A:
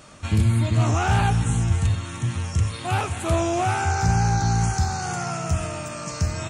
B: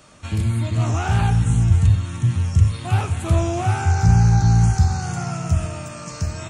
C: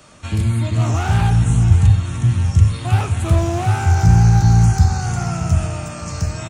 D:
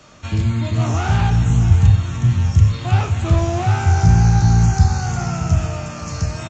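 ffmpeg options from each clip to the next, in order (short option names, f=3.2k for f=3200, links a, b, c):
-filter_complex "[0:a]bandreject=f=72.95:t=h:w=4,bandreject=f=145.9:t=h:w=4,bandreject=f=218.85:t=h:w=4,bandreject=f=291.8:t=h:w=4,bandreject=f=364.75:t=h:w=4,bandreject=f=437.7:t=h:w=4,bandreject=f=510.65:t=h:w=4,bandreject=f=583.6:t=h:w=4,bandreject=f=656.55:t=h:w=4,bandreject=f=729.5:t=h:w=4,bandreject=f=802.45:t=h:w=4,bandreject=f=875.4:t=h:w=4,bandreject=f=948.35:t=h:w=4,bandreject=f=1.0213k:t=h:w=4,bandreject=f=1.09425k:t=h:w=4,bandreject=f=1.1672k:t=h:w=4,bandreject=f=1.24015k:t=h:w=4,bandreject=f=1.3131k:t=h:w=4,bandreject=f=1.38605k:t=h:w=4,bandreject=f=1.459k:t=h:w=4,bandreject=f=1.53195k:t=h:w=4,bandreject=f=1.6049k:t=h:w=4,bandreject=f=1.67785k:t=h:w=4,bandreject=f=1.7508k:t=h:w=4,bandreject=f=1.82375k:t=h:w=4,bandreject=f=1.8967k:t=h:w=4,bandreject=f=1.96965k:t=h:w=4,bandreject=f=2.0426k:t=h:w=4,bandreject=f=2.11555k:t=h:w=4,bandreject=f=2.1885k:t=h:w=4,bandreject=f=2.26145k:t=h:w=4,bandreject=f=2.3344k:t=h:w=4,bandreject=f=2.40735k:t=h:w=4,bandreject=f=2.4803k:t=h:w=4,bandreject=f=2.55325k:t=h:w=4,acrossover=split=200|990[a][b][c];[a]dynaudnorm=f=370:g=7:m=11.5dB[d];[d][b][c]amix=inputs=3:normalize=0,volume=-2dB"
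-filter_complex "[0:a]acrossover=split=250[a][b];[b]asoftclip=type=hard:threshold=-24dB[c];[a][c]amix=inputs=2:normalize=0,aecho=1:1:609|1218|1827|2436:0.178|0.0818|0.0376|0.0173,volume=3dB"
-filter_complex "[0:a]aresample=16000,aresample=44100,asplit=2[a][b];[b]adelay=31,volume=-12dB[c];[a][c]amix=inputs=2:normalize=0"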